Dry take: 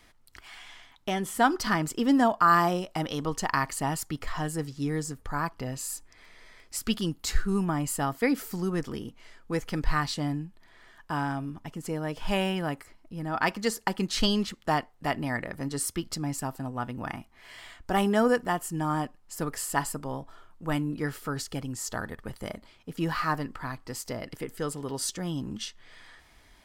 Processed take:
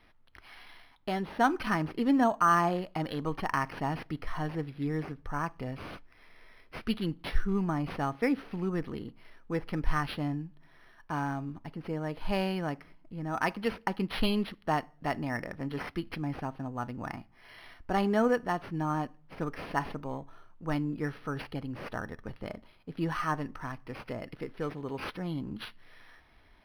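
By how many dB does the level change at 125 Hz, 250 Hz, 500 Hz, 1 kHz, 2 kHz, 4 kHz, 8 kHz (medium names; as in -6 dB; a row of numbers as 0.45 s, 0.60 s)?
-2.5 dB, -2.5 dB, -2.5 dB, -3.0 dB, -3.5 dB, -7.5 dB, -18.5 dB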